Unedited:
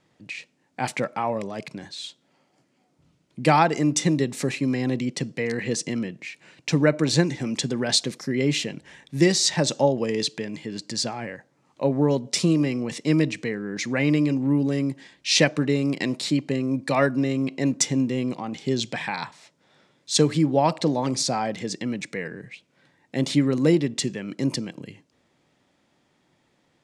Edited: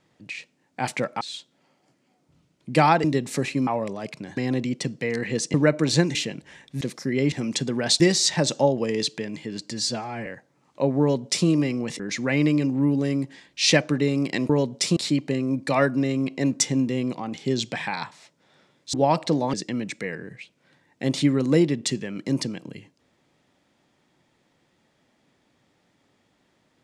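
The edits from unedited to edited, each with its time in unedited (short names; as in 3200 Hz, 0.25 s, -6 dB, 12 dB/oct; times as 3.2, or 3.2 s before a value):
1.21–1.91 move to 4.73
3.74–4.1 cut
5.9–6.74 cut
7.35–8.03 swap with 8.54–9.2
10.91–11.28 stretch 1.5×
12.02–12.49 copy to 16.17
13.01–13.67 cut
20.14–20.48 cut
21.08–21.66 cut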